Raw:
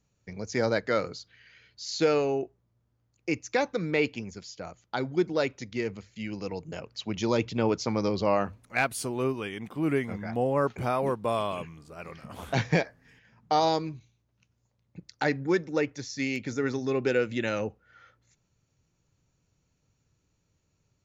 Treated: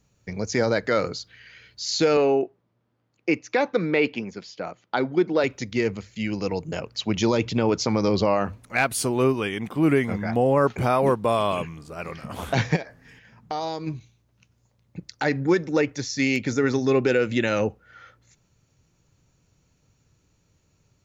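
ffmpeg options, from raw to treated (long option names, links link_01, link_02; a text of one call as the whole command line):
ffmpeg -i in.wav -filter_complex "[0:a]asettb=1/sr,asplit=3[link_01][link_02][link_03];[link_01]atrim=end=2.174[link_04];[link_02]atrim=start=2.17:end=5.44,asetpts=PTS-STARTPTS,afade=type=in:duration=0.004:curve=qsin,afade=type=out:start_time=3.266:duration=0.004:curve=qsin,highpass=190,lowpass=3700[link_05];[link_03]atrim=start=5.436[link_06];[link_04][link_05]acrossfade=duration=0.004:curve1=hsin:curve2=qsin[link_07];[link_07][link_06]acrossfade=duration=0.004:curve1=qsin:curve2=hsin,asplit=3[link_08][link_09][link_10];[link_08]afade=type=out:start_time=12.75:duration=0.02[link_11];[link_09]acompressor=threshold=-40dB:ratio=2.5:attack=3.2:release=140:knee=1:detection=peak,afade=type=in:start_time=12.75:duration=0.02,afade=type=out:start_time=13.86:duration=0.02[link_12];[link_10]afade=type=in:start_time=13.86:duration=0.02[link_13];[link_11][link_12][link_13]amix=inputs=3:normalize=0,alimiter=limit=-18.5dB:level=0:latency=1:release=78,volume=8dB" out.wav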